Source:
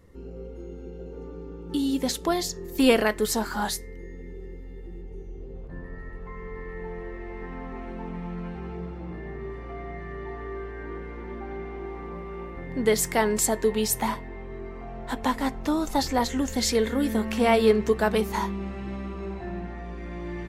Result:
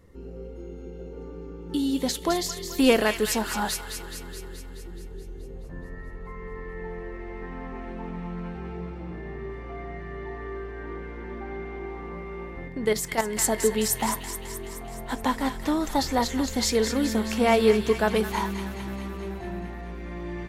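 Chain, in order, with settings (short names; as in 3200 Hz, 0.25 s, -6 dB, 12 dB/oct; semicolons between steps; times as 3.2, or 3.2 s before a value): thin delay 0.213 s, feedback 66%, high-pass 1500 Hz, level -7 dB; 12.68–13.38 level quantiser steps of 10 dB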